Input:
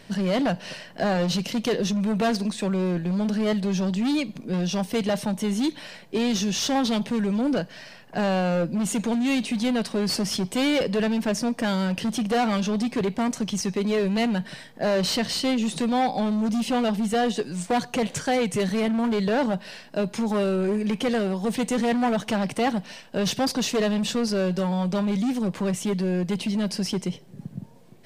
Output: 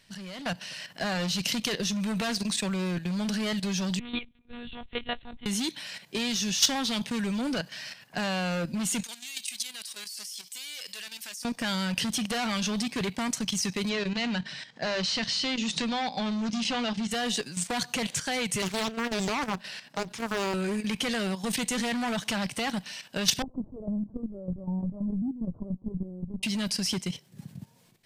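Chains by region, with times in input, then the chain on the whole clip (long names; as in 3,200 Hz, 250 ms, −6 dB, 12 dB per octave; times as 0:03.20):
0:03.99–0:05.46: one-pitch LPC vocoder at 8 kHz 240 Hz + expander for the loud parts 2.5 to 1, over −32 dBFS
0:09.03–0:11.45: first difference + compressor whose output falls as the input rises −39 dBFS
0:13.89–0:17.11: low-pass filter 6,400 Hz 24 dB per octave + mains-hum notches 50/100/150/200/250/300/350/400 Hz
0:18.62–0:20.54: high-pass filter 65 Hz 24 dB per octave + high-shelf EQ 3,300 Hz −4.5 dB + highs frequency-modulated by the lows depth 0.77 ms
0:23.42–0:26.43: Gaussian smoothing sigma 14 samples + linear-prediction vocoder at 8 kHz pitch kept
whole clip: automatic gain control gain up to 11 dB; guitar amp tone stack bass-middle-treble 5-5-5; output level in coarse steps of 11 dB; level +4 dB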